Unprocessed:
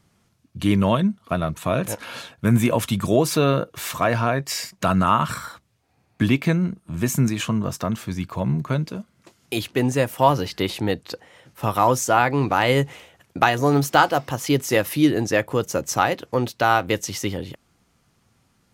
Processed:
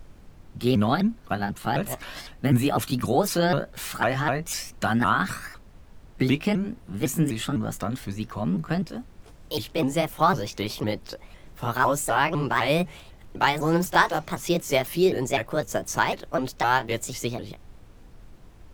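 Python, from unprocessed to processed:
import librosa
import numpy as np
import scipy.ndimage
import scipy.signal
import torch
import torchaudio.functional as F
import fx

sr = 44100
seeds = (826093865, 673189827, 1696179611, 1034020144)

y = fx.pitch_ramps(x, sr, semitones=5.0, every_ms=252)
y = fx.dmg_noise_colour(y, sr, seeds[0], colour='brown', level_db=-43.0)
y = y * 10.0 ** (-2.5 / 20.0)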